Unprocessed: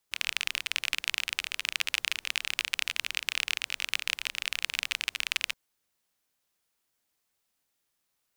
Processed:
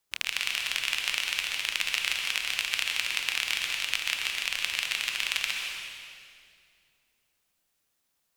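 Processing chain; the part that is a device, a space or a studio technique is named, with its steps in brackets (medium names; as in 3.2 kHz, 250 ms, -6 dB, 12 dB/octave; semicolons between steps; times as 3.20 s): stairwell (reverberation RT60 2.3 s, pre-delay 118 ms, DRR 1 dB)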